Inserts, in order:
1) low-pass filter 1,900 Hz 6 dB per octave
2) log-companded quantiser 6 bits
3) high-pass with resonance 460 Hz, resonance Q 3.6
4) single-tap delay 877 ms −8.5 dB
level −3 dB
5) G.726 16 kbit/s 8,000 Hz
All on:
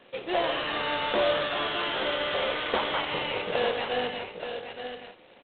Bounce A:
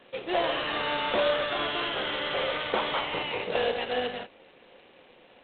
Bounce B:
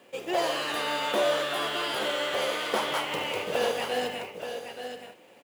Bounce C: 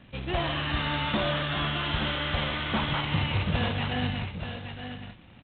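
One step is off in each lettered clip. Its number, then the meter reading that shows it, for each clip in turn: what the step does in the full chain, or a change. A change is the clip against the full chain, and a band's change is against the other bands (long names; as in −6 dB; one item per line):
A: 4, change in momentary loudness spread −6 LU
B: 5, 125 Hz band −2.5 dB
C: 3, 125 Hz band +18.5 dB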